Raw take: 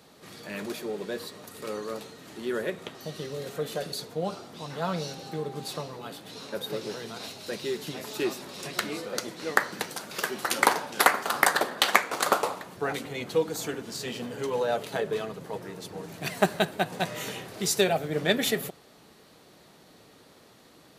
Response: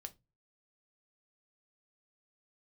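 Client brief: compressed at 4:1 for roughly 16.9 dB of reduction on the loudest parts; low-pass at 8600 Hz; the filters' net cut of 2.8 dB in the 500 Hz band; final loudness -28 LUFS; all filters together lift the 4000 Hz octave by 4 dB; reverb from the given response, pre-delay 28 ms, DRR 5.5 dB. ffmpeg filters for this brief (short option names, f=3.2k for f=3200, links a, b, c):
-filter_complex "[0:a]lowpass=8.6k,equalizer=f=500:t=o:g=-3.5,equalizer=f=4k:t=o:g=5,acompressor=threshold=-38dB:ratio=4,asplit=2[a][b];[1:a]atrim=start_sample=2205,adelay=28[c];[b][c]afir=irnorm=-1:irlink=0,volume=-0.5dB[d];[a][d]amix=inputs=2:normalize=0,volume=11.5dB"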